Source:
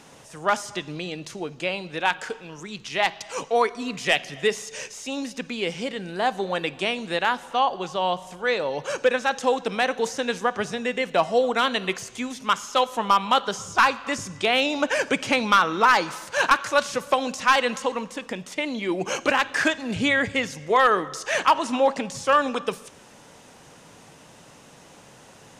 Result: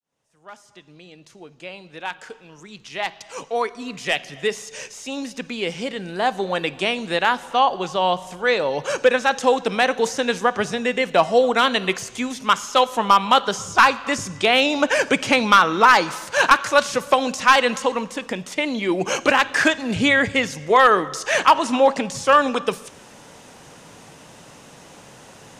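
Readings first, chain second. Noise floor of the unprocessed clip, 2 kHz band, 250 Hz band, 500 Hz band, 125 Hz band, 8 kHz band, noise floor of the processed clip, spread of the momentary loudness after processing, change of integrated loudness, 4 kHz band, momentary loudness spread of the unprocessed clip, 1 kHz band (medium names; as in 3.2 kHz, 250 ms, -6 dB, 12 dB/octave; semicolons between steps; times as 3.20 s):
-50 dBFS, +4.0 dB, +4.0 dB, +4.0 dB, +3.5 dB, +4.0 dB, -48 dBFS, 14 LU, +4.5 dB, +4.0 dB, 12 LU, +4.0 dB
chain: fade-in on the opening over 7.75 s; trim +4.5 dB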